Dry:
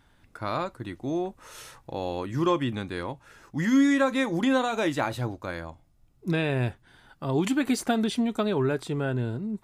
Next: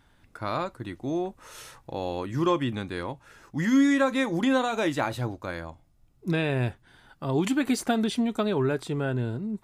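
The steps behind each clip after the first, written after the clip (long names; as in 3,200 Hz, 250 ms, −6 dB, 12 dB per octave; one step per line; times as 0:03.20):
no processing that can be heard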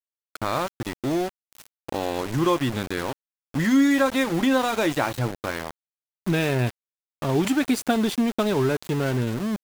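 in parallel at +3 dB: downward compressor 5 to 1, threshold −33 dBFS, peak gain reduction 14 dB
on the sum: centre clipping without the shift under −28 dBFS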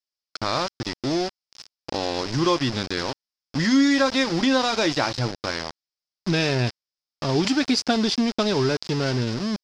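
low-pass with resonance 5,100 Hz, resonance Q 6.6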